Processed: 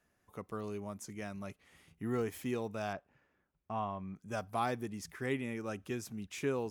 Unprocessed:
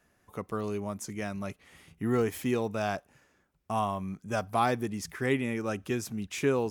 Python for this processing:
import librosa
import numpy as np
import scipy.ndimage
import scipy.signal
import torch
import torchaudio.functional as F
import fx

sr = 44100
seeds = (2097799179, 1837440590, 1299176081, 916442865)

y = fx.lowpass(x, sr, hz=2800.0, slope=12, at=(2.93, 4.16))
y = y * librosa.db_to_amplitude(-7.5)